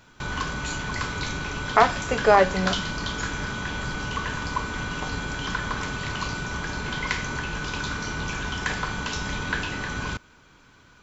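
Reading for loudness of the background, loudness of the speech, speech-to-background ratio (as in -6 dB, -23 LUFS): -29.5 LUFS, -22.0 LUFS, 7.5 dB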